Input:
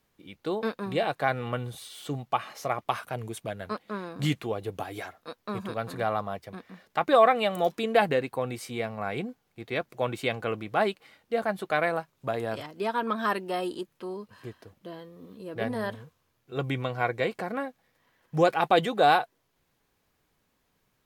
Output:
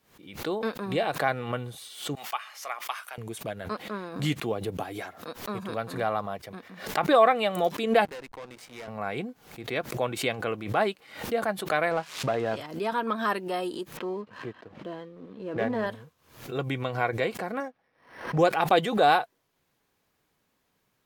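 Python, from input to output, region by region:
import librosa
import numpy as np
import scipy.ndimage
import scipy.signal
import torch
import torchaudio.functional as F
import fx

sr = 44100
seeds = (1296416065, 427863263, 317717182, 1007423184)

y = fx.chain(x, sr, fx.highpass(hz=1200.0, slope=12),
    fx.notch(hz=4000.0, q=17.0), at=(2.15, 3.18))
y = fx.chain(y, sr, fx.highpass(hz=130.0, slope=12),
    fx.low_shelf(hz=180.0, db=10.0),
    fx.quant_float(bits=6), at=(4.43, 5.34))
y = fx.chain(y, sr, fx.weighting(curve='A'),
    fx.backlash(play_db=-38.0),
    fx.tube_stage(drive_db=37.0, bias=0.8), at=(8.05, 8.88))
y = fx.chain(y, sr, fx.crossing_spikes(level_db=-32.5),
    fx.lowpass(hz=3700.0, slope=12),
    fx.leveller(passes=1), at=(11.91, 12.57))
y = fx.chain(y, sr, fx.bandpass_edges(low_hz=120.0, high_hz=2800.0),
    fx.leveller(passes=1), at=(13.97, 15.87))
y = fx.chain(y, sr, fx.bass_treble(bass_db=-5, treble_db=-11),
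    fx.resample_linear(factor=6), at=(17.6, 18.39))
y = fx.low_shelf(y, sr, hz=60.0, db=-11.5)
y = fx.pre_swell(y, sr, db_per_s=110.0)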